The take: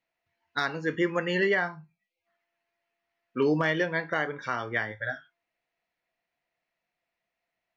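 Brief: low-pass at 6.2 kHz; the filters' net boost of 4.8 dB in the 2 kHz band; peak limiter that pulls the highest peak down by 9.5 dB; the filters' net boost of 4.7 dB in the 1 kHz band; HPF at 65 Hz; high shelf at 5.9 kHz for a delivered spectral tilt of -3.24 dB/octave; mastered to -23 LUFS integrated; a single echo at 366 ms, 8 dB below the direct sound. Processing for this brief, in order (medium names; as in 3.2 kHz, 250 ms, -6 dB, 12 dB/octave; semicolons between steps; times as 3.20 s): high-pass 65 Hz; low-pass 6.2 kHz; peaking EQ 1 kHz +5 dB; peaking EQ 2 kHz +3.5 dB; treble shelf 5.9 kHz +7 dB; peak limiter -19.5 dBFS; delay 366 ms -8 dB; trim +7.5 dB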